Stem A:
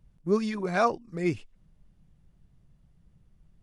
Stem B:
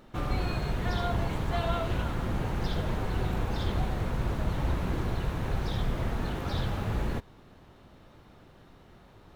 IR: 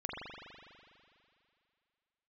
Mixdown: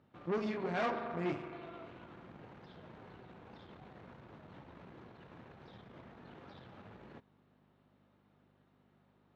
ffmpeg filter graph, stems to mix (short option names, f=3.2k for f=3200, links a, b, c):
-filter_complex "[0:a]flanger=delay=19.5:depth=4.5:speed=2.1,volume=-1dB,asplit=2[a][b];[b]volume=-8dB[c];[1:a]alimiter=level_in=1.5dB:limit=-24dB:level=0:latency=1:release=47,volume=-1.5dB,aeval=exprs='val(0)+0.00501*(sin(2*PI*50*n/s)+sin(2*PI*2*50*n/s)/2+sin(2*PI*3*50*n/s)/3+sin(2*PI*4*50*n/s)/4+sin(2*PI*5*50*n/s)/5)':c=same,volume=-11.5dB[d];[2:a]atrim=start_sample=2205[e];[c][e]afir=irnorm=-1:irlink=0[f];[a][d][f]amix=inputs=3:normalize=0,aeval=exprs='(tanh(31.6*val(0)+0.75)-tanh(0.75))/31.6':c=same,highpass=160,lowpass=3.4k"